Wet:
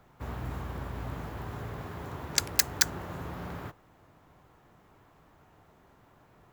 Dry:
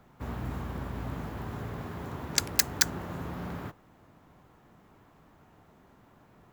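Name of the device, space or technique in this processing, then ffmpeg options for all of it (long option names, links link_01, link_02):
low shelf boost with a cut just above: -af "lowshelf=frequency=110:gain=-7,lowshelf=frequency=110:gain=7,equalizer=frequency=220:width_type=o:width=0.87:gain=-5.5"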